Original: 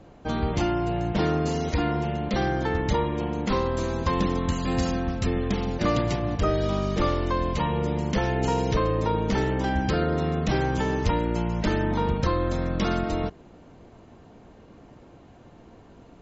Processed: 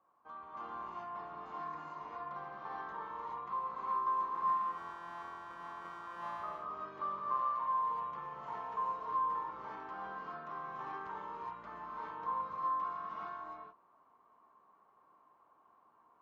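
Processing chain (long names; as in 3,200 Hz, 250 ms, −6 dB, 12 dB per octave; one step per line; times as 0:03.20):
0:04.34–0:06.23: samples sorted by size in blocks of 256 samples
resonant band-pass 1,100 Hz, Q 12
reverb whose tail is shaped and stops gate 450 ms rising, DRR −6 dB
level −4 dB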